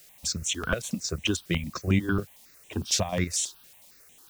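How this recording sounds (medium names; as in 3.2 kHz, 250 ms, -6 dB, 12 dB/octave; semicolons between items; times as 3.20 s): chopped level 4.8 Hz, depth 60%, duty 55%; a quantiser's noise floor 10-bit, dither triangular; notches that jump at a steady rate 11 Hz 260–4700 Hz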